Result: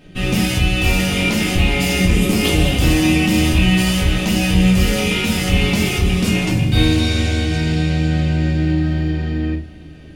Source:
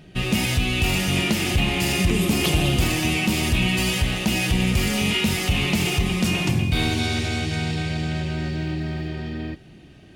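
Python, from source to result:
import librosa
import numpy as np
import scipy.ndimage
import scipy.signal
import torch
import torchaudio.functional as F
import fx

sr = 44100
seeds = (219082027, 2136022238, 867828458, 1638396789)

y = x + 10.0 ** (-21.0 / 20.0) * np.pad(x, (int(812 * sr / 1000.0), 0))[:len(x)]
y = fx.room_shoebox(y, sr, seeds[0], volume_m3=120.0, walls='furnished', distance_m=2.1)
y = y * 10.0 ** (-1.0 / 20.0)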